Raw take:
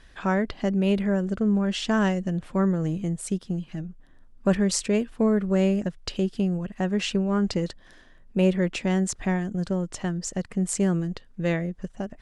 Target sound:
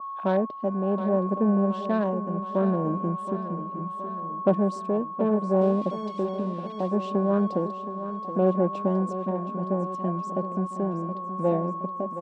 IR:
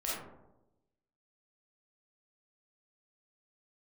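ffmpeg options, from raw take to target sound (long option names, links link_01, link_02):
-filter_complex "[0:a]afwtdn=0.0316,aeval=exprs='val(0)+0.0251*sin(2*PI*1100*n/s)':channel_layout=same,asoftclip=type=tanh:threshold=-18.5dB,tremolo=f=0.69:d=0.42,asettb=1/sr,asplit=3[link_01][link_02][link_03];[link_01]atrim=end=5.614[link_04];[link_02]atrim=start=5.61:end=6.88,asetpts=PTS-STARTPTS,afade=type=in:duration=0.004:curve=qsin,afade=type=out:start_time=1.266:duration=0.004:curve=qsin,aeval=exprs='sgn(val(0))*max(abs(val(0))-0.00668,0)':channel_layout=same[link_05];[link_03]atrim=start=6.876[link_06];[link_04][link_05]acrossfade=duration=0.004:curve1=hsin:curve2=qsin[link_07];[link_07][link_06]acrossfade=duration=0.004:curve1=qsin:curve2=hsin,highpass=frequency=190:width=0.5412,highpass=frequency=190:width=1.3066,equalizer=frequency=600:width_type=q:width=4:gain=7,equalizer=frequency=1300:width_type=q:width=4:gain=-8,equalizer=frequency=2000:width_type=q:width=4:gain=-7,equalizer=frequency=3600:width_type=q:width=4:gain=4,equalizer=frequency=6700:width_type=q:width=4:gain=-5,lowpass=frequency=9100:width=0.5412,lowpass=frequency=9100:width=1.3066,aecho=1:1:721|1442|2163|2884|3605|4326:0.266|0.152|0.0864|0.0493|0.0281|0.016,adynamicequalizer=threshold=0.00447:dfrequency=1800:dqfactor=0.7:tfrequency=1800:tqfactor=0.7:attack=5:release=100:ratio=0.375:range=3.5:mode=cutabove:tftype=highshelf,volume=4dB"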